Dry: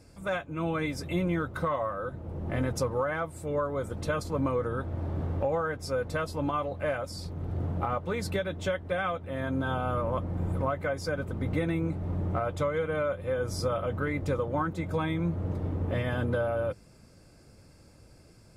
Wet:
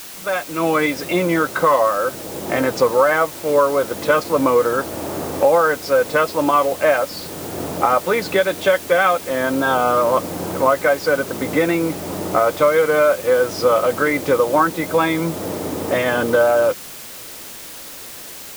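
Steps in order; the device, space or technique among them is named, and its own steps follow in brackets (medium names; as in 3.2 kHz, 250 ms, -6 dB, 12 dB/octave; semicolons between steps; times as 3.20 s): dictaphone (band-pass 330–4000 Hz; level rider gain up to 7 dB; wow and flutter; white noise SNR 17 dB); trim +8.5 dB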